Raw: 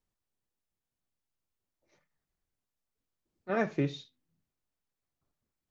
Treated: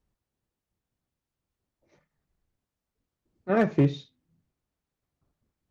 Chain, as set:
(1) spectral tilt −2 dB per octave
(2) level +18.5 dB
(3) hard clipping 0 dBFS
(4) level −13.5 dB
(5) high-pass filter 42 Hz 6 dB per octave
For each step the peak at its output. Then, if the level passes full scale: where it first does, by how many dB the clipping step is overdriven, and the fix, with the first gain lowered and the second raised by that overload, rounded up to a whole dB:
−15.0, +3.5, 0.0, −13.5, −12.0 dBFS
step 2, 3.5 dB
step 2 +14.5 dB, step 4 −9.5 dB

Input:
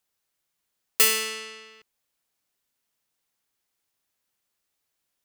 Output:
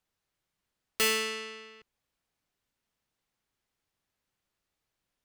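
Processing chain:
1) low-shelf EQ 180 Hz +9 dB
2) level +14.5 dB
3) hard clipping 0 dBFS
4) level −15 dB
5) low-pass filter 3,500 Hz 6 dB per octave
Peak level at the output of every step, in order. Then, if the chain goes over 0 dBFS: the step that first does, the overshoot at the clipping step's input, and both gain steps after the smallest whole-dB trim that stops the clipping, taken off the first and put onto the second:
−6.5, +8.0, 0.0, −15.0, −16.5 dBFS
step 2, 8.0 dB
step 2 +6.5 dB, step 4 −7 dB

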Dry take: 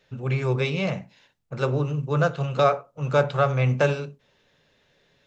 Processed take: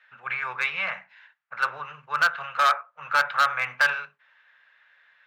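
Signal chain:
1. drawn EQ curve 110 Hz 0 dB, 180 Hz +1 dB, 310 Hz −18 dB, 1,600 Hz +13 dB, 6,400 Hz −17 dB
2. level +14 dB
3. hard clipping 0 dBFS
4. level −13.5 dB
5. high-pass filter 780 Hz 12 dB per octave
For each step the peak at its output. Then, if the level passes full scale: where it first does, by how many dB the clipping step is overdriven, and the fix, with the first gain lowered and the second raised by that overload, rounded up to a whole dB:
−4.0, +10.0, 0.0, −13.5, −9.0 dBFS
step 2, 10.0 dB
step 2 +4 dB, step 4 −3.5 dB

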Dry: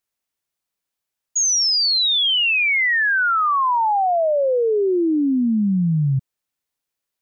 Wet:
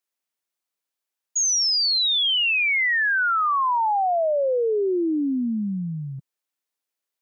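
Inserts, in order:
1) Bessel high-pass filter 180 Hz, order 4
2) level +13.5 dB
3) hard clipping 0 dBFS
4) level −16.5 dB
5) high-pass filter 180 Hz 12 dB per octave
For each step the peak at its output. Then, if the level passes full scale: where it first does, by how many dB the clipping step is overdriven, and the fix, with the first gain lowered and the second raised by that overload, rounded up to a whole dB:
−15.0, −1.5, −1.5, −18.0, −18.0 dBFS
no step passes full scale

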